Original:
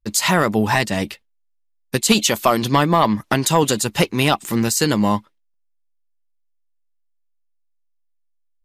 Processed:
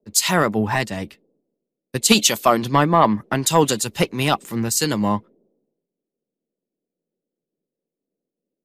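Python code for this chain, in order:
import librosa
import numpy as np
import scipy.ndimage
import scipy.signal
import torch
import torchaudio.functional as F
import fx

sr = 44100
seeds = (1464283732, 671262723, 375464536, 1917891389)

y = fx.dmg_noise_band(x, sr, seeds[0], low_hz=160.0, high_hz=520.0, level_db=-50.0)
y = fx.band_widen(y, sr, depth_pct=100)
y = y * 10.0 ** (-3.0 / 20.0)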